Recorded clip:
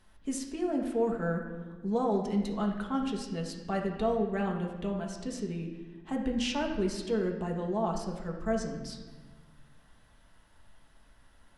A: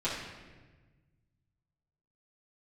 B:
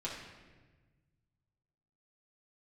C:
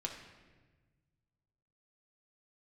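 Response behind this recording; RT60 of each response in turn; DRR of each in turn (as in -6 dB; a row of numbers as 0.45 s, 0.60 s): C; 1.3 s, 1.3 s, 1.3 s; -10.5 dB, -6.0 dB, 0.5 dB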